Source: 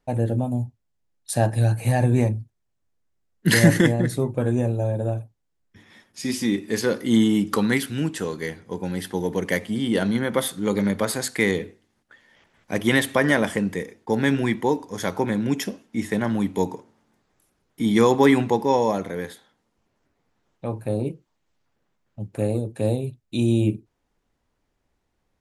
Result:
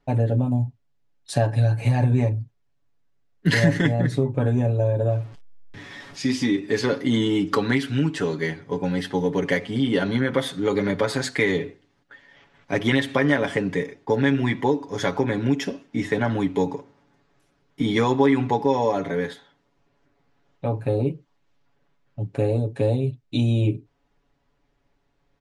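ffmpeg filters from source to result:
-filter_complex "[0:a]asettb=1/sr,asplit=3[a][b][c];[a]atrim=end=5.104[d];[b]atrim=start=5.1:end=6.24,asetpts=PTS-STARTPTS,afade=t=in:d=0.004:c=qsin,afade=t=out:st=1.136:d=0.004:c=qsin,aeval=exprs='val(0)+0.5*0.0075*sgn(val(0))':c=same[e];[c]atrim=start=6.236[f];[d][e]acrossfade=d=0.004:c1=hsin:c2=qsin[g];[g][f]acrossfade=d=0.004:c1=qsin:c2=hsin,lowpass=4.9k,aecho=1:1:7.1:0.77,acompressor=threshold=-21dB:ratio=2.5,volume=2.5dB"

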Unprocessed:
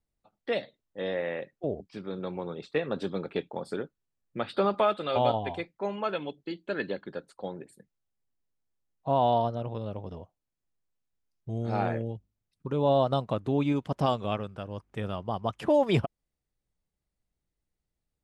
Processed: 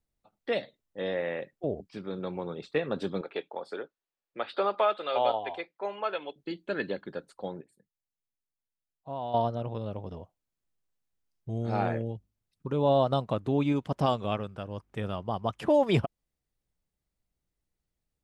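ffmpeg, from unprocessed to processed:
-filter_complex "[0:a]asettb=1/sr,asplit=3[a][b][c];[a]atrim=end=3.214[d];[b]atrim=start=3.21:end=6.36,asetpts=PTS-STARTPTS,afade=t=in:d=0.004:c=qsin,afade=t=out:st=3.146:d=0.004:c=qsin,acrossover=split=360 5500:gain=0.1 1 0.2[e][f][g];[e][f][g]amix=inputs=3:normalize=0[h];[c]atrim=start=6.356[i];[d][h]acrossfade=d=0.004:c1=hsin:c2=qsin[j];[j][i]acrossfade=d=0.004:c1=qsin:c2=hsin,asplit=3[k][l][m];[k]atrim=end=7.612[n];[l]atrim=start=7.608:end=9.342,asetpts=PTS-STARTPTS,volume=-11.5dB[o];[m]atrim=start=9.338[p];[n][o]acrossfade=d=0.004:c1=hsin:c2=hsin[q];[q][p]acrossfade=d=0.004:c1=hsin:c2=hsin"

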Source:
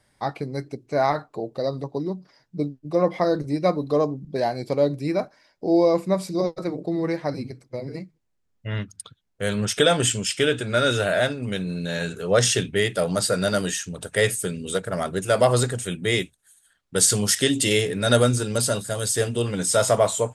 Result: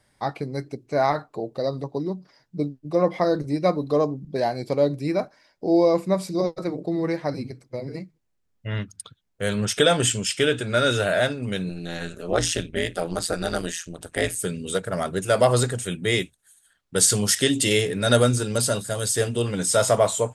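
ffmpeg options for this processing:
-filter_complex "[0:a]asettb=1/sr,asplit=3[a][b][c];[a]atrim=end=11.694[d];[b]atrim=start=11.69:end=14.36,asetpts=PTS-STARTPTS,afade=t=in:d=0.004:c=qsin,afade=t=out:st=2.666:d=0.004:c=qsin,tremolo=f=170:d=0.947[e];[c]atrim=start=14.356[f];[d][e]acrossfade=d=0.004:c1=hsin:c2=qsin[g];[g][f]acrossfade=d=0.004:c1=qsin:c2=hsin"

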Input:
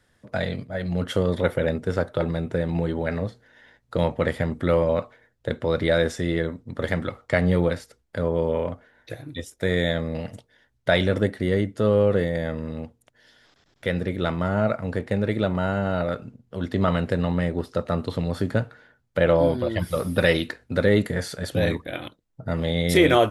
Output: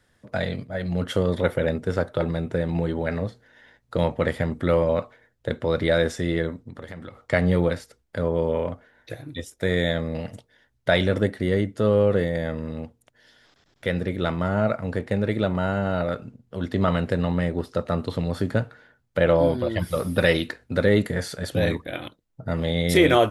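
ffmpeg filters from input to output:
-filter_complex "[0:a]asettb=1/sr,asplit=3[a][b][c];[a]atrim=end=6.684[d];[b]atrim=start=6.68:end=7.23,asetpts=PTS-STARTPTS,afade=t=in:d=0.004:c=qsin,afade=t=out:st=0.546:d=0.004:c=qsin,acompressor=threshold=-36dB:ratio=4:attack=3.2:release=140:knee=1:detection=peak[e];[c]atrim=start=7.226[f];[d][e]acrossfade=d=0.004:c1=hsin:c2=qsin[g];[g][f]acrossfade=d=0.004:c1=qsin:c2=hsin"

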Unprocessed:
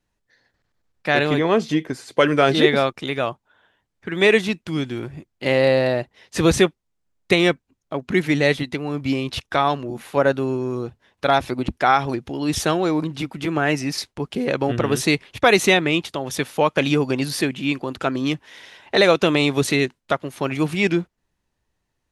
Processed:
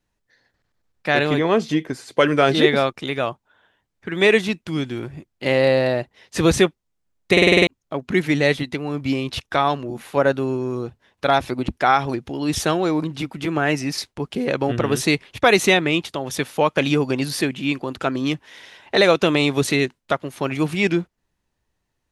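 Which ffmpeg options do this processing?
-filter_complex "[0:a]asplit=8[a][b][c][d][e][f][g][h];[a]atrim=end=7.372[i];[b]atrim=start=7.318:end=7.372[j];[c]atrim=start=7.318:end=7.372[k];[d]atrim=start=7.318:end=7.372[l];[e]atrim=start=7.318:end=7.372[m];[f]atrim=start=7.318:end=7.372[n];[g]atrim=start=7.318:end=7.372[o];[h]atrim=start=7.668[p];[i][j]acrossfade=d=0.004:c1=hsin:c2=hsin[q];[q][k]acrossfade=d=0.004:c1=hsin:c2=hsin[r];[r][l]acrossfade=d=0.004:c1=hsin:c2=hsin[s];[s][m]acrossfade=d=0.004:c1=hsin:c2=hsin[t];[t][n]acrossfade=d=0.004:c1=hsin:c2=hsin[u];[u][o]acrossfade=d=0.004:c1=hsin:c2=hsin[v];[v][p]acrossfade=d=0.004:c1=hsin:c2=hsin"

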